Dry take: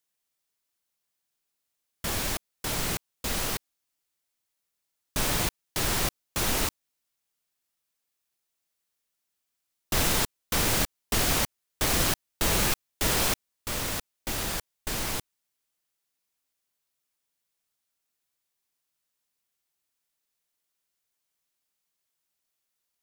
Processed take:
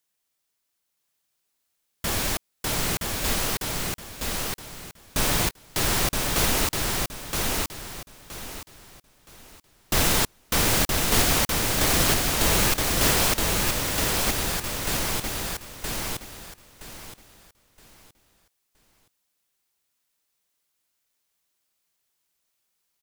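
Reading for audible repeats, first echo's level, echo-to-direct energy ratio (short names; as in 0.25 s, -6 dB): 3, -3.0 dB, -2.5 dB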